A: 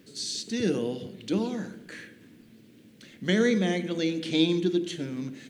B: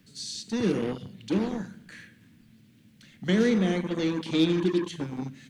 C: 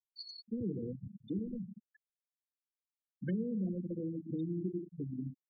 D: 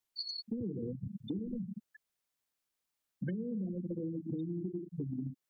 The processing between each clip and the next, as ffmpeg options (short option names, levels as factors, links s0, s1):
-filter_complex "[0:a]lowshelf=f=410:g=6.5,acrossover=split=240|660|3600[s0][s1][s2][s3];[s1]acrusher=bits=4:mix=0:aa=0.5[s4];[s0][s4][s2][s3]amix=inputs=4:normalize=0,volume=0.668"
-filter_complex "[0:a]acrossover=split=140[s0][s1];[s1]acompressor=threshold=0.0178:ratio=8[s2];[s0][s2]amix=inputs=2:normalize=0,afftfilt=real='re*gte(hypot(re,im),0.0447)':imag='im*gte(hypot(re,im),0.0447)':win_size=1024:overlap=0.75,volume=0.794"
-af "acompressor=threshold=0.00562:ratio=6,volume=2.99"